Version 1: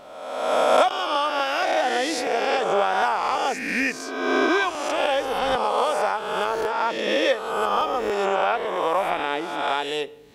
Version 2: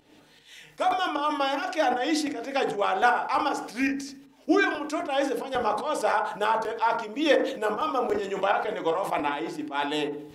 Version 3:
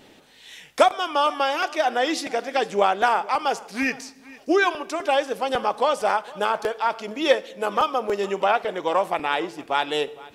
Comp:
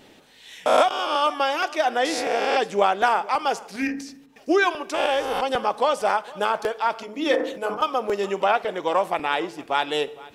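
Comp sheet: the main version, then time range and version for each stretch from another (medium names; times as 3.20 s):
3
0.66–1.22 s: from 1
2.05–2.56 s: from 1
3.76–4.36 s: from 2
4.94–5.41 s: from 1
7.03–7.82 s: from 2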